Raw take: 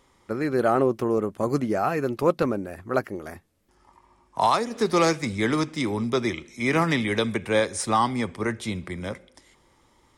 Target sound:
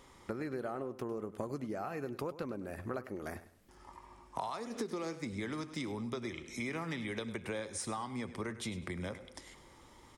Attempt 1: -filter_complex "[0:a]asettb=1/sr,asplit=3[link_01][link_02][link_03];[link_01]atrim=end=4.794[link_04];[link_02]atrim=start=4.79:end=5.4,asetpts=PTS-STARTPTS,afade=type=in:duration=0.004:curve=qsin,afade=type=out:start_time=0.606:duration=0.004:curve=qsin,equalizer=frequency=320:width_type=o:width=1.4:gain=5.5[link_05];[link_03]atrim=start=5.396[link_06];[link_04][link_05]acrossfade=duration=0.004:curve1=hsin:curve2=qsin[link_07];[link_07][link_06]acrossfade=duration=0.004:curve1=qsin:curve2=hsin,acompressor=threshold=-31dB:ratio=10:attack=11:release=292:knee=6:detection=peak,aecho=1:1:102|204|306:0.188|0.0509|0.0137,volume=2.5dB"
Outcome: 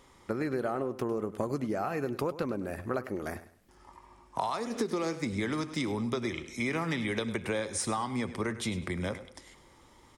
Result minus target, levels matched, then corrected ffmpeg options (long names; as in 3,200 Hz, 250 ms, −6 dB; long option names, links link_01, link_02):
downward compressor: peak gain reduction −7 dB
-filter_complex "[0:a]asettb=1/sr,asplit=3[link_01][link_02][link_03];[link_01]atrim=end=4.794[link_04];[link_02]atrim=start=4.79:end=5.4,asetpts=PTS-STARTPTS,afade=type=in:duration=0.004:curve=qsin,afade=type=out:start_time=0.606:duration=0.004:curve=qsin,equalizer=frequency=320:width_type=o:width=1.4:gain=5.5[link_05];[link_03]atrim=start=5.396[link_06];[link_04][link_05]acrossfade=duration=0.004:curve1=hsin:curve2=qsin[link_07];[link_07][link_06]acrossfade=duration=0.004:curve1=qsin:curve2=hsin,acompressor=threshold=-39dB:ratio=10:attack=11:release=292:knee=6:detection=peak,aecho=1:1:102|204|306:0.188|0.0509|0.0137,volume=2.5dB"